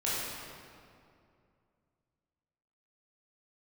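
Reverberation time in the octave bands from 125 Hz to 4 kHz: 3.1, 2.8, 2.6, 2.3, 1.9, 1.5 seconds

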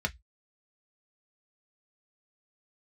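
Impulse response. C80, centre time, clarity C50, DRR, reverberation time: 39.5 dB, 4 ms, 26.5 dB, 3.0 dB, 0.10 s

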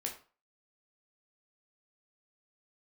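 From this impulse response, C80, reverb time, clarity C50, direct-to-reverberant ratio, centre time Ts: 14.5 dB, 0.40 s, 9.0 dB, 0.5 dB, 18 ms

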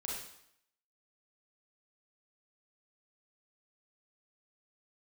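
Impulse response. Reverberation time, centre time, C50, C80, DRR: 0.75 s, 60 ms, 0.0 dB, 4.0 dB, −4.0 dB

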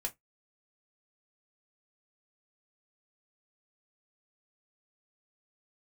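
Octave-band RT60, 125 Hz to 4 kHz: 0.20, 0.15, 0.15, 0.15, 0.15, 0.10 seconds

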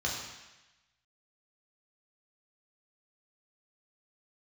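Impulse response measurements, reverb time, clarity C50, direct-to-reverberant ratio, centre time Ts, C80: 1.0 s, 2.5 dB, −3.5 dB, 58 ms, 4.5 dB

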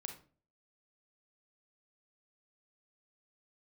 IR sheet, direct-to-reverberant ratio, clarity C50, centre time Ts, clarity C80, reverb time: 4.0 dB, 8.0 dB, 16 ms, 14.0 dB, 0.40 s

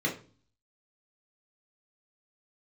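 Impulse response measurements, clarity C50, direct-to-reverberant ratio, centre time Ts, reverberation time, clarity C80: 10.0 dB, −2.0 dB, 19 ms, 0.40 s, 16.0 dB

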